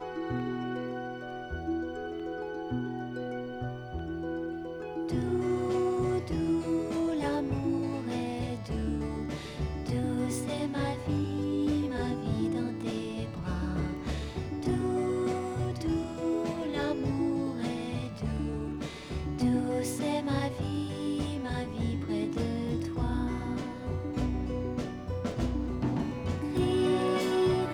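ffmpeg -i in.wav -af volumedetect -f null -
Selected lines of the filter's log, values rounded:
mean_volume: -31.4 dB
max_volume: -16.6 dB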